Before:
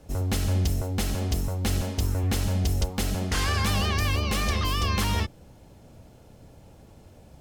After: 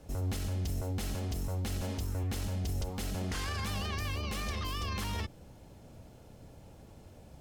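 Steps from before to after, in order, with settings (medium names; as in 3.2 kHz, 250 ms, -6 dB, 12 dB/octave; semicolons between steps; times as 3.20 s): peak limiter -25 dBFS, peak gain reduction 9 dB; trim -2.5 dB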